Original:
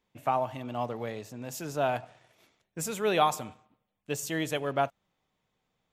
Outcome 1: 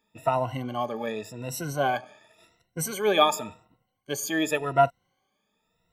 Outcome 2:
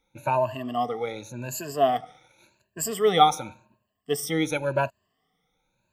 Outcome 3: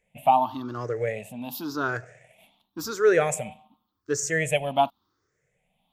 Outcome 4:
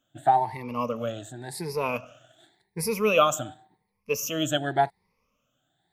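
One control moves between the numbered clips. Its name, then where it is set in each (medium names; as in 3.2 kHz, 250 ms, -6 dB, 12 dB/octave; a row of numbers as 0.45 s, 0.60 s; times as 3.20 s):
drifting ripple filter, ripples per octave: 2, 1.4, 0.51, 0.86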